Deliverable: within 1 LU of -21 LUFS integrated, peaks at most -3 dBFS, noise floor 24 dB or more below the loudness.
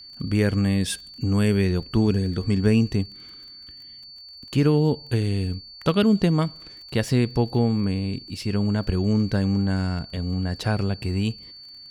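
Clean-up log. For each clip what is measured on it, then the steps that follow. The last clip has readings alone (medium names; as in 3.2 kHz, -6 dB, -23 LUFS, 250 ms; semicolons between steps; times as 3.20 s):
tick rate 25 per s; steady tone 4.5 kHz; tone level -41 dBFS; loudness -23.5 LUFS; peak level -7.0 dBFS; loudness target -21.0 LUFS
-> de-click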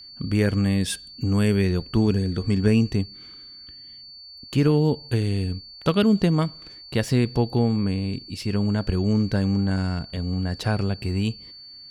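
tick rate 0.084 per s; steady tone 4.5 kHz; tone level -41 dBFS
-> band-stop 4.5 kHz, Q 30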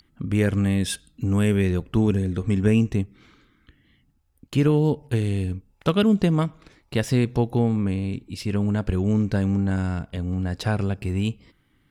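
steady tone not found; loudness -23.5 LUFS; peak level -7.0 dBFS; loudness target -21.0 LUFS
-> trim +2.5 dB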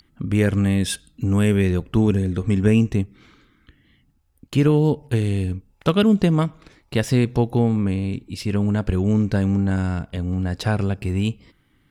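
loudness -21.0 LUFS; peak level -4.5 dBFS; noise floor -62 dBFS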